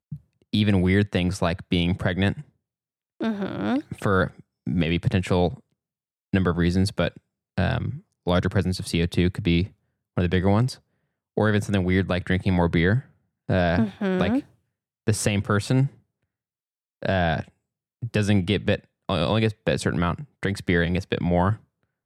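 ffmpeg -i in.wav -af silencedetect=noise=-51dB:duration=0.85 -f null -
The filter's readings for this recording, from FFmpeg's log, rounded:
silence_start: 15.99
silence_end: 17.02 | silence_duration: 1.03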